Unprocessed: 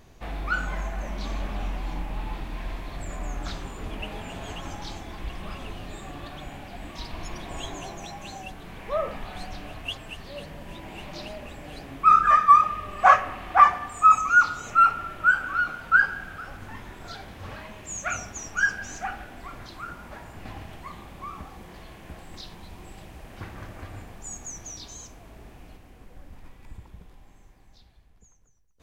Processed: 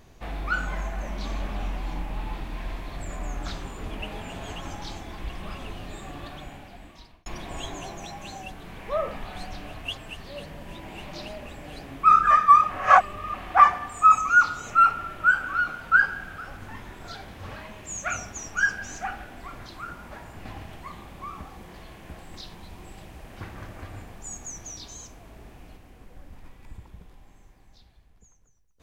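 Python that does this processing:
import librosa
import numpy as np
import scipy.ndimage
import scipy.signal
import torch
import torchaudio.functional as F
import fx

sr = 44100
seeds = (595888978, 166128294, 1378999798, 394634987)

y = fx.edit(x, sr, fx.fade_out_span(start_s=6.28, length_s=0.98),
    fx.reverse_span(start_s=12.7, length_s=0.64), tone=tone)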